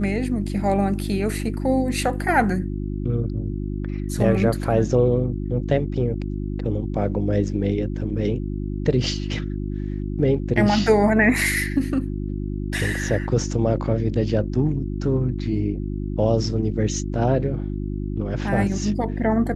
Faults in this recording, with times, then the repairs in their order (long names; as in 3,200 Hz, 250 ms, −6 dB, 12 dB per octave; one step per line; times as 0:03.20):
mains hum 50 Hz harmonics 7 −27 dBFS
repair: hum removal 50 Hz, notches 7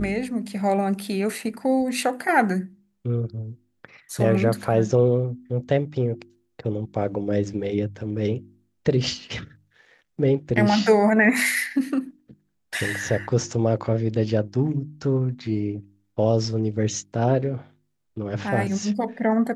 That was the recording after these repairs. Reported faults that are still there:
none of them is left